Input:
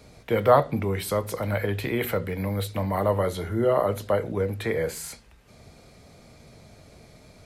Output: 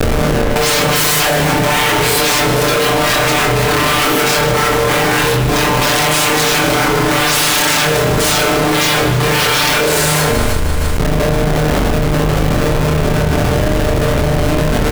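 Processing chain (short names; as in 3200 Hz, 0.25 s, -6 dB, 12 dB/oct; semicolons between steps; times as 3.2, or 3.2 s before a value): EQ curve 140 Hz 0 dB, 480 Hz +15 dB, 3100 Hz -1 dB; sine folder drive 19 dB, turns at -4.5 dBFS; granular stretch 2×, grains 27 ms; Schmitt trigger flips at -18 dBFS; doubler 26 ms -4 dB; feedback echo 0.155 s, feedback 57%, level -11 dB; reverb, pre-delay 39 ms, DRR 3 dB; fast leveller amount 100%; gain -8.5 dB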